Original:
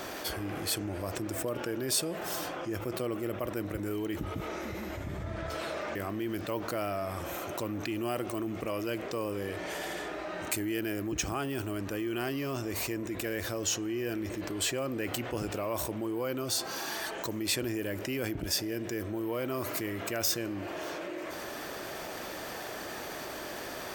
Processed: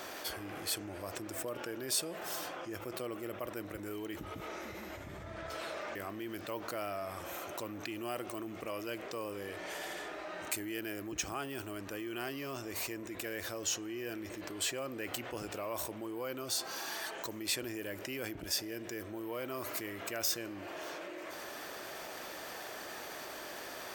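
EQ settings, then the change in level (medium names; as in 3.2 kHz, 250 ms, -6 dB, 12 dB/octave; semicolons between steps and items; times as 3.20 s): bass shelf 330 Hz -8.5 dB; -3.5 dB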